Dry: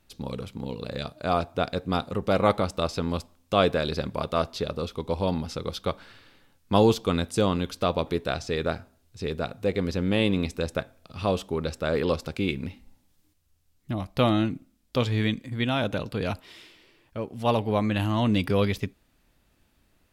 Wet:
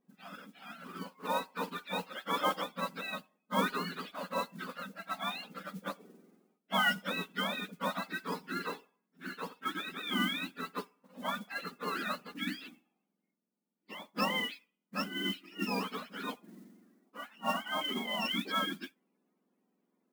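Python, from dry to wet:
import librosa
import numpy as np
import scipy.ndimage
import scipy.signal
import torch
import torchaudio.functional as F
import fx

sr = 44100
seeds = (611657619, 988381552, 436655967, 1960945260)

y = fx.octave_mirror(x, sr, pivot_hz=810.0)
y = fx.brickwall_bandpass(y, sr, low_hz=180.0, high_hz=5500.0)
y = fx.env_lowpass(y, sr, base_hz=1400.0, full_db=-22.0)
y = fx.mod_noise(y, sr, seeds[0], snr_db=18)
y = y * 10.0 ** (-6.5 / 20.0)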